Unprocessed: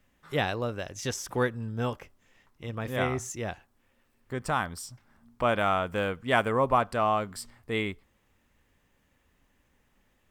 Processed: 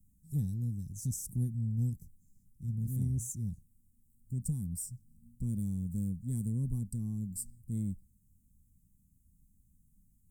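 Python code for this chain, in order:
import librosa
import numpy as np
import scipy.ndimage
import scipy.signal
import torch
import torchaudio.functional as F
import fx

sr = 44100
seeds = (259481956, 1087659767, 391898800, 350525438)

p1 = scipy.signal.sosfilt(scipy.signal.ellip(3, 1.0, 50, [190.0, 8400.0], 'bandstop', fs=sr, output='sos'), x)
p2 = 10.0 ** (-33.5 / 20.0) * np.tanh(p1 / 10.0 ** (-33.5 / 20.0))
p3 = p1 + (p2 * librosa.db_to_amplitude(-9.0))
y = p3 * librosa.db_to_amplitude(2.0)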